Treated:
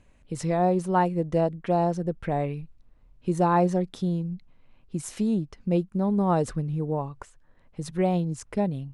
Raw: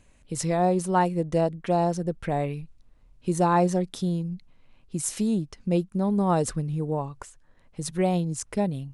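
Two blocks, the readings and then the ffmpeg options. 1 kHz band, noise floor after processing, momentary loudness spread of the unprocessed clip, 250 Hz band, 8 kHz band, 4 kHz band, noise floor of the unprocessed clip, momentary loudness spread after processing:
-0.5 dB, -58 dBFS, 13 LU, 0.0 dB, -8.5 dB, -5.0 dB, -58 dBFS, 12 LU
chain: -af "highshelf=f=4600:g=-11.5"

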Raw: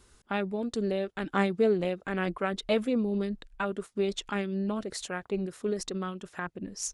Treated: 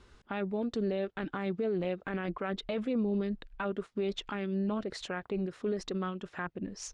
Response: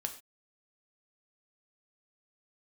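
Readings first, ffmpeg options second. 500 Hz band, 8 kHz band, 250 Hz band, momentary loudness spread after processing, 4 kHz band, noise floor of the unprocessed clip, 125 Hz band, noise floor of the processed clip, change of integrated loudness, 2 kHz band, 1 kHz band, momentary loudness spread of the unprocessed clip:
-4.0 dB, no reading, -2.5 dB, 6 LU, -4.5 dB, -62 dBFS, -2.0 dB, -62 dBFS, -3.5 dB, -5.0 dB, -5.0 dB, 9 LU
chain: -filter_complex "[0:a]lowpass=3800,asplit=2[s0][s1];[s1]acompressor=threshold=0.01:ratio=6,volume=0.794[s2];[s0][s2]amix=inputs=2:normalize=0,alimiter=limit=0.0794:level=0:latency=1:release=11,volume=0.75"

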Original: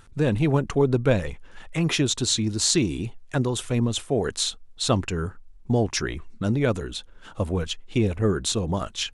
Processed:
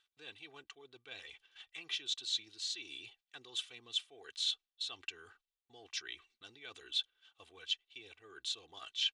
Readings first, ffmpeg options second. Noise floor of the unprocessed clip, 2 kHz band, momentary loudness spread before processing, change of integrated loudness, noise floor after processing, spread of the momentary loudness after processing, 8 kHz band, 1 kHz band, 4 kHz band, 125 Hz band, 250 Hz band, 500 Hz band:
-47 dBFS, -14.5 dB, 10 LU, -15.0 dB, under -85 dBFS, 19 LU, -20.0 dB, -25.5 dB, -7.5 dB, under -40 dB, -39.0 dB, -33.5 dB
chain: -af "agate=range=0.282:threshold=0.0112:ratio=16:detection=peak,aecho=1:1:2.6:0.7,areverse,acompressor=threshold=0.0282:ratio=12,areverse,bandpass=f=3400:t=q:w=2.6:csg=0,volume=1.41"

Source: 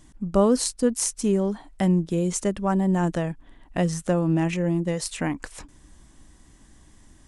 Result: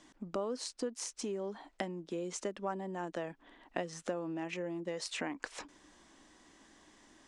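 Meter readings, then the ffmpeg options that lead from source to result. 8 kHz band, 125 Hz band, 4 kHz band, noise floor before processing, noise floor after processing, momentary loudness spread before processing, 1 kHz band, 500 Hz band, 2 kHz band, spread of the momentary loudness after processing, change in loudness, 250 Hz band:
-15.0 dB, -23.5 dB, -8.5 dB, -53 dBFS, -68 dBFS, 8 LU, -11.5 dB, -13.0 dB, -8.0 dB, 6 LU, -15.5 dB, -18.5 dB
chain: -filter_complex "[0:a]acompressor=threshold=0.0316:ratio=12,acrossover=split=260 6900:gain=0.0708 1 0.0708[s0][s1][s2];[s0][s1][s2]amix=inputs=3:normalize=0"

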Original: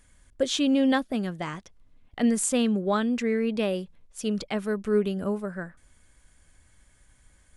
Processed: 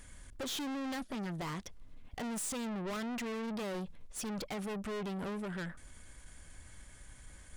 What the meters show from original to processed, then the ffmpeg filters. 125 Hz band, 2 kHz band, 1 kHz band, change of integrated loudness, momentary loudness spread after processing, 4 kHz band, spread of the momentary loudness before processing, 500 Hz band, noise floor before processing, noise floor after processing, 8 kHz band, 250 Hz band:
-7.5 dB, -9.0 dB, -8.5 dB, -12.5 dB, 18 LU, -10.0 dB, 13 LU, -14.0 dB, -61 dBFS, -55 dBFS, -9.0 dB, -13.5 dB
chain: -filter_complex "[0:a]asplit=2[s0][s1];[s1]acompressor=threshold=0.0224:ratio=6,volume=1.33[s2];[s0][s2]amix=inputs=2:normalize=0,aeval=exprs='(tanh(63.1*val(0)+0.2)-tanh(0.2))/63.1':c=same,volume=0.891"

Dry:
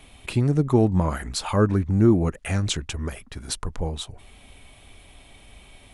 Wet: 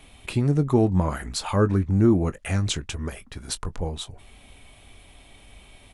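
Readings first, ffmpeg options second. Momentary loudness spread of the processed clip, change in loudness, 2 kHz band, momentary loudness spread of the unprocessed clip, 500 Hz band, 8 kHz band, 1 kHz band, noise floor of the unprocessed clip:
14 LU, -0.5 dB, -1.0 dB, 13 LU, -1.0 dB, -1.0 dB, -1.0 dB, -51 dBFS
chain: -filter_complex "[0:a]asplit=2[s0][s1];[s1]adelay=21,volume=0.2[s2];[s0][s2]amix=inputs=2:normalize=0,volume=0.891"

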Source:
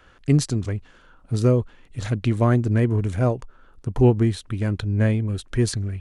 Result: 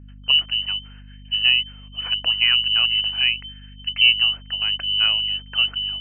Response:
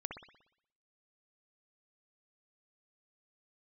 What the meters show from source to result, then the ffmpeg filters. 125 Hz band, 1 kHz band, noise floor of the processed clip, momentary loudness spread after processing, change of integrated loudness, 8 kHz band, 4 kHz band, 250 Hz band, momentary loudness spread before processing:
-23.0 dB, -7.0 dB, -42 dBFS, 12 LU, +4.0 dB, no reading, +25.5 dB, under -25 dB, 13 LU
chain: -af "lowpass=f=2600:t=q:w=0.5098,lowpass=f=2600:t=q:w=0.6013,lowpass=f=2600:t=q:w=0.9,lowpass=f=2600:t=q:w=2.563,afreqshift=-3100,agate=range=0.0562:threshold=0.00316:ratio=16:detection=peak,aeval=exprs='val(0)+0.00891*(sin(2*PI*50*n/s)+sin(2*PI*2*50*n/s)/2+sin(2*PI*3*50*n/s)/3+sin(2*PI*4*50*n/s)/4+sin(2*PI*5*50*n/s)/5)':c=same"

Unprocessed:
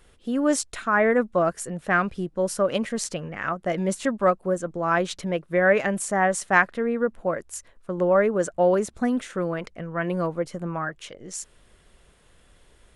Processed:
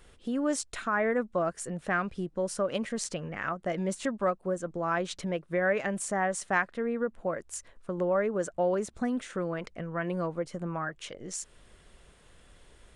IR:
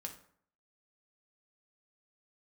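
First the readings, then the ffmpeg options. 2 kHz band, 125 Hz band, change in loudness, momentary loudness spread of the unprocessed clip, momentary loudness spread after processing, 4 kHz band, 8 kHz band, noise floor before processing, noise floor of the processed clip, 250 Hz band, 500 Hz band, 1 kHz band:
-7.5 dB, -5.5 dB, -7.0 dB, 12 LU, 9 LU, -5.0 dB, -5.0 dB, -58 dBFS, -60 dBFS, -6.0 dB, -7.0 dB, -7.0 dB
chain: -af "acompressor=threshold=0.0126:ratio=1.5,aresample=22050,aresample=44100"

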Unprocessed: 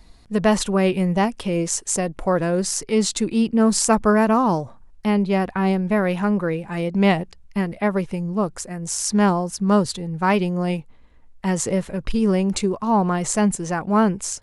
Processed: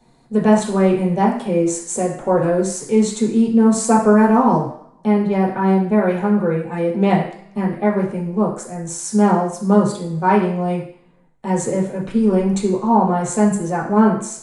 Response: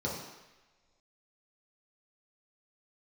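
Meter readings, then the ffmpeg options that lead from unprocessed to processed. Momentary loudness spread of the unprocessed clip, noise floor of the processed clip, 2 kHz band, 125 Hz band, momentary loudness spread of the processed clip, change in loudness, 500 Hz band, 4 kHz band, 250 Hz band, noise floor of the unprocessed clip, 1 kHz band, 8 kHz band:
8 LU, -52 dBFS, -1.0 dB, +2.5 dB, 9 LU, +3.5 dB, +4.0 dB, -6.5 dB, +4.0 dB, -48 dBFS, +4.0 dB, -2.0 dB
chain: -filter_complex "[1:a]atrim=start_sample=2205,asetrate=74970,aresample=44100[s0];[0:a][s0]afir=irnorm=-1:irlink=0,volume=0.708"

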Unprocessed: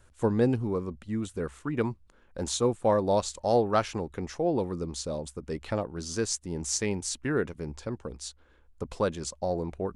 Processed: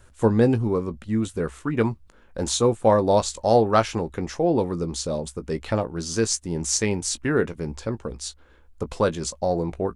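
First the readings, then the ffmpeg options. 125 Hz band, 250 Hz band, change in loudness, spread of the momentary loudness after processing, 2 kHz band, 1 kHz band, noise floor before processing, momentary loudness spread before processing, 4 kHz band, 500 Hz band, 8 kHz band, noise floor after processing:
+6.5 dB, +6.0 dB, +6.0 dB, 12 LU, +6.0 dB, +6.5 dB, -60 dBFS, 12 LU, +6.5 dB, +6.0 dB, +6.5 dB, -53 dBFS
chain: -filter_complex "[0:a]asplit=2[s0][s1];[s1]adelay=18,volume=0.251[s2];[s0][s2]amix=inputs=2:normalize=0,volume=2"

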